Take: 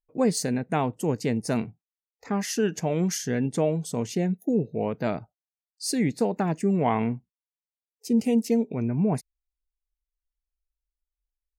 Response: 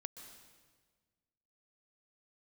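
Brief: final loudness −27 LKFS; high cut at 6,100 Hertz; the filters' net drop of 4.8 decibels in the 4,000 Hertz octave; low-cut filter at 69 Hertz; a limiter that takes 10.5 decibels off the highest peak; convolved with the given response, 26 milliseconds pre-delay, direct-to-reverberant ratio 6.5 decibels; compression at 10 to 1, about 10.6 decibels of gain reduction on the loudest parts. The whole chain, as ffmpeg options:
-filter_complex "[0:a]highpass=69,lowpass=6100,equalizer=frequency=4000:width_type=o:gain=-5,acompressor=threshold=-29dB:ratio=10,alimiter=level_in=6.5dB:limit=-24dB:level=0:latency=1,volume=-6.5dB,asplit=2[link_01][link_02];[1:a]atrim=start_sample=2205,adelay=26[link_03];[link_02][link_03]afir=irnorm=-1:irlink=0,volume=-2.5dB[link_04];[link_01][link_04]amix=inputs=2:normalize=0,volume=11.5dB"

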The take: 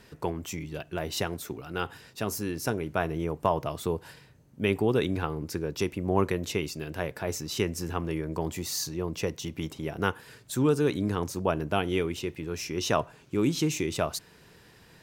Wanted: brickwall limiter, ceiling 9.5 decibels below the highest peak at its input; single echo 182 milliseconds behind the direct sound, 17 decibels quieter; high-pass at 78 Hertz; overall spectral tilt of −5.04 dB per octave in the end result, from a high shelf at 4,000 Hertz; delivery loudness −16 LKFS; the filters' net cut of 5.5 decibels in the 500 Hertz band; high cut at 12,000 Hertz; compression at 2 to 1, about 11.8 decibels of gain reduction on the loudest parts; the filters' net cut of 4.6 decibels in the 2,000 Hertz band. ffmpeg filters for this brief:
ffmpeg -i in.wav -af "highpass=78,lowpass=12000,equalizer=frequency=500:width_type=o:gain=-7,equalizer=frequency=2000:width_type=o:gain=-4,highshelf=frequency=4000:gain=-7.5,acompressor=threshold=-45dB:ratio=2,alimiter=level_in=7.5dB:limit=-24dB:level=0:latency=1,volume=-7.5dB,aecho=1:1:182:0.141,volume=28.5dB" out.wav

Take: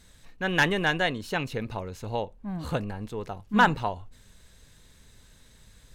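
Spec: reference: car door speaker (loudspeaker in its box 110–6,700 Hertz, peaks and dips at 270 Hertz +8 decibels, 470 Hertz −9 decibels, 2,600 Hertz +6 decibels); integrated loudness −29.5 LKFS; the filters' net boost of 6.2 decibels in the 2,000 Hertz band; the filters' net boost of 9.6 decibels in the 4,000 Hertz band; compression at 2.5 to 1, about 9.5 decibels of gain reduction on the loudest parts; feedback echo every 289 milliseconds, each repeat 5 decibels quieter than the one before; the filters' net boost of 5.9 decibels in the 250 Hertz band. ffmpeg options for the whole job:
ffmpeg -i in.wav -af "equalizer=frequency=250:width_type=o:gain=5,equalizer=frequency=2000:width_type=o:gain=5.5,equalizer=frequency=4000:width_type=o:gain=7.5,acompressor=threshold=-26dB:ratio=2.5,highpass=110,equalizer=frequency=270:width_type=q:width=4:gain=8,equalizer=frequency=470:width_type=q:width=4:gain=-9,equalizer=frequency=2600:width_type=q:width=4:gain=6,lowpass=frequency=6700:width=0.5412,lowpass=frequency=6700:width=1.3066,aecho=1:1:289|578|867|1156|1445|1734|2023:0.562|0.315|0.176|0.0988|0.0553|0.031|0.0173,volume=-1.5dB" out.wav

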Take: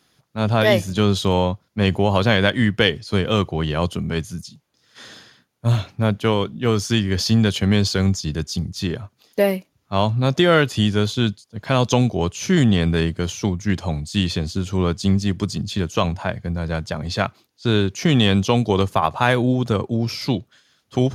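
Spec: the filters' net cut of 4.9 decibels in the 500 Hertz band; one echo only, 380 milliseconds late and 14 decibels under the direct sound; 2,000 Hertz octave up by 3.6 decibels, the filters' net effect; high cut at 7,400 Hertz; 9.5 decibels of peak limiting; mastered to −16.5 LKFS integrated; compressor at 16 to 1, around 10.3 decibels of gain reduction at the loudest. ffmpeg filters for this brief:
ffmpeg -i in.wav -af "lowpass=7400,equalizer=frequency=500:width_type=o:gain=-6.5,equalizer=frequency=2000:width_type=o:gain=5,acompressor=threshold=-22dB:ratio=16,alimiter=limit=-18.5dB:level=0:latency=1,aecho=1:1:380:0.2,volume=13.5dB" out.wav

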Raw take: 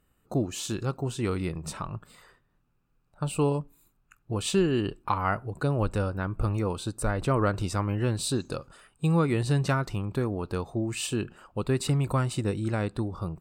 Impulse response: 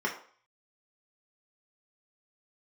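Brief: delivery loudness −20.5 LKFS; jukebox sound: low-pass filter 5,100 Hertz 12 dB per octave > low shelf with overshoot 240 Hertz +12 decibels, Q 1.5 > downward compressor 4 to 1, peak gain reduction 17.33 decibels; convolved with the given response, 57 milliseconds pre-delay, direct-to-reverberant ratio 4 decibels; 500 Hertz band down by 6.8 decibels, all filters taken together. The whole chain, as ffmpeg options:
-filter_complex "[0:a]equalizer=frequency=500:width_type=o:gain=-6,asplit=2[link_01][link_02];[1:a]atrim=start_sample=2205,adelay=57[link_03];[link_02][link_03]afir=irnorm=-1:irlink=0,volume=-12.5dB[link_04];[link_01][link_04]amix=inputs=2:normalize=0,lowpass=5100,lowshelf=frequency=240:width_type=q:width=1.5:gain=12,acompressor=threshold=-29dB:ratio=4,volume=11dB"

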